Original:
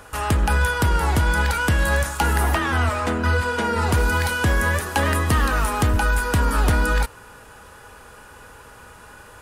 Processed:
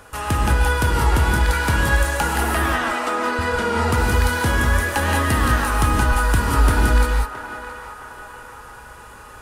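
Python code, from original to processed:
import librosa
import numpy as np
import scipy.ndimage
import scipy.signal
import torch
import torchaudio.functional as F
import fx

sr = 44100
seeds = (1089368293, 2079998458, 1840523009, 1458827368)

y = fx.highpass(x, sr, hz=280.0, slope=24, at=(2.72, 3.39))
y = fx.echo_banded(y, sr, ms=668, feedback_pct=55, hz=1100.0, wet_db=-9.0)
y = fx.rev_gated(y, sr, seeds[0], gate_ms=220, shape='rising', drr_db=0.0)
y = y * 10.0 ** (-1.5 / 20.0)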